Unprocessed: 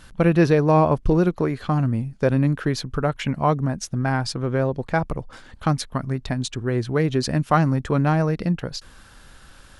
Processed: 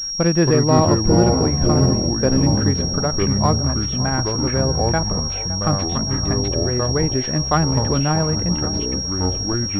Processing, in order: ever faster or slower copies 206 ms, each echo -5 st, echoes 3; band-passed feedback delay 564 ms, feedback 62%, band-pass 680 Hz, level -14 dB; class-D stage that switches slowly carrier 5.6 kHz

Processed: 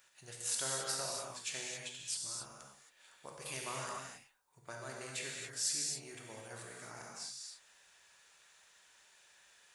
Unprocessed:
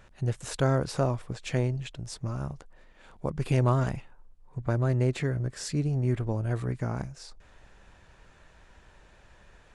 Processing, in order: differentiator; gated-style reverb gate 300 ms flat, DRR -2 dB; trim +2.5 dB

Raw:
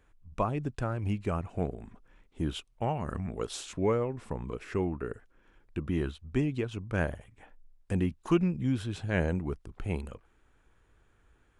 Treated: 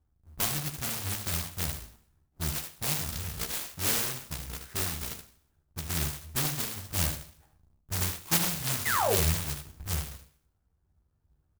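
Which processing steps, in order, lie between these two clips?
square wave that keeps the level; high-pass 42 Hz 12 dB/octave; level-controlled noise filter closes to 1 kHz, open at -25 dBFS; graphic EQ 250/500/1000/2000/4000/8000 Hz -8/-11/-5/-4/-3/+11 dB; painted sound fall, 8.85–9.15 s, 360–2200 Hz -21 dBFS; resonant high shelf 5.8 kHz +7 dB, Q 3; doubling 13 ms -3.5 dB; delay 76 ms -7.5 dB; Schroeder reverb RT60 0.59 s, combs from 28 ms, DRR 11.5 dB; sampling jitter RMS 0.069 ms; trim -7.5 dB

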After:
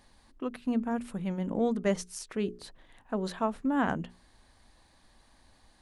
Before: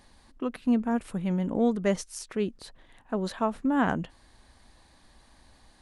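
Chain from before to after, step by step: in parallel at +1 dB: gain riding 2 s; on the sum: hum notches 60/120/180/240/300/360/420 Hz; trim -9 dB

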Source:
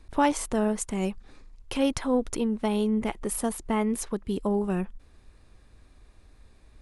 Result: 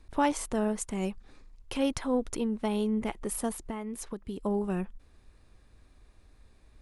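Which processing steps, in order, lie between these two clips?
3.62–4.45 s: compression 6:1, threshold -30 dBFS, peak gain reduction 9 dB; trim -3.5 dB

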